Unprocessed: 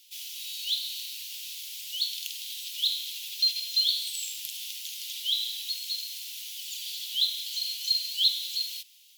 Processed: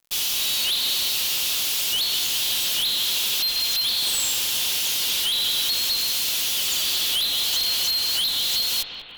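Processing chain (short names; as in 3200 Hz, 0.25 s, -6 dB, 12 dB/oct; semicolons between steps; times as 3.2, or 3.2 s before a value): compressor, threshold -32 dBFS, peak gain reduction 13 dB; fuzz box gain 52 dB, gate -47 dBFS; analogue delay 0.192 s, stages 4096, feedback 67%, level -7 dB; gain -8 dB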